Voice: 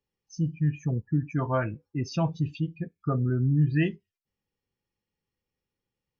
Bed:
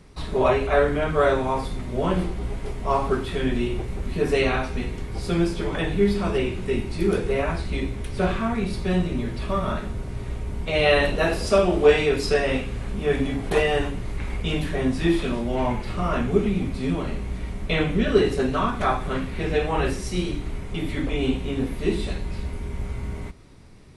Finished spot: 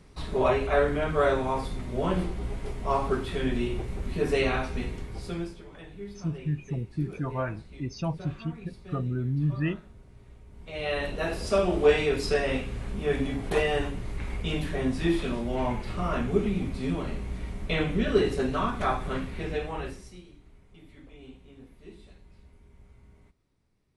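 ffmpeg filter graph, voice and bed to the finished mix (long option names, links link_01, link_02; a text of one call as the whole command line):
ffmpeg -i stem1.wav -i stem2.wav -filter_complex "[0:a]adelay=5850,volume=-4dB[link_01];[1:a]volume=12dB,afade=type=out:start_time=4.87:duration=0.76:silence=0.149624,afade=type=in:start_time=10.5:duration=1.25:silence=0.158489,afade=type=out:start_time=19.14:duration=1.08:silence=0.1[link_02];[link_01][link_02]amix=inputs=2:normalize=0" out.wav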